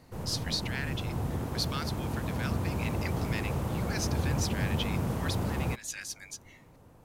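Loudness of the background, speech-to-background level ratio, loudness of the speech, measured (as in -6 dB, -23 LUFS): -33.0 LUFS, -5.0 dB, -38.0 LUFS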